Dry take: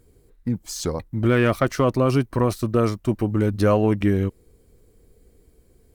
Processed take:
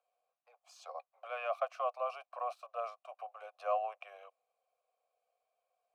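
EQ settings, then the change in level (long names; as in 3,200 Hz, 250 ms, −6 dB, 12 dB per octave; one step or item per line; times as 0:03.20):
formant filter a
Butterworth high-pass 530 Hz 72 dB per octave
high-shelf EQ 7,600 Hz +4 dB
−2.5 dB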